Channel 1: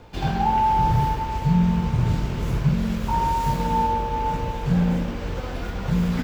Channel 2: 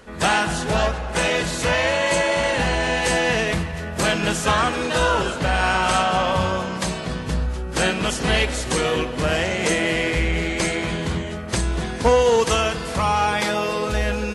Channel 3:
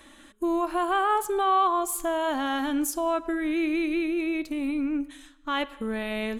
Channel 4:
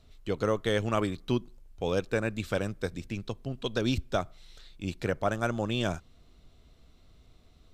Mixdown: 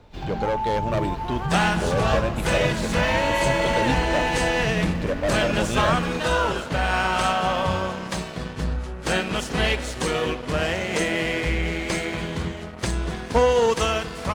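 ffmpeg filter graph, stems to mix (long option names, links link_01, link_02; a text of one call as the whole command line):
ffmpeg -i stem1.wav -i stem2.wav -i stem3.wav -i stem4.wav -filter_complex "[0:a]alimiter=limit=-16.5dB:level=0:latency=1:release=113,dynaudnorm=framelen=130:gausssize=5:maxgain=3dB,volume=-6dB[link_01];[1:a]aeval=exprs='sgn(val(0))*max(abs(val(0))-0.0168,0)':channel_layout=same,adelay=1300,volume=-1.5dB[link_02];[2:a]adelay=500,volume=-9.5dB[link_03];[3:a]equalizer=frequency=590:width=6.4:gain=12,asoftclip=type=hard:threshold=-23.5dB,volume=2.5dB,asplit=2[link_04][link_05];[link_05]apad=whole_len=303966[link_06];[link_03][link_06]sidechaingate=range=-33dB:threshold=-43dB:ratio=16:detection=peak[link_07];[link_01][link_02][link_07][link_04]amix=inputs=4:normalize=0,highshelf=frequency=7600:gain=-7" out.wav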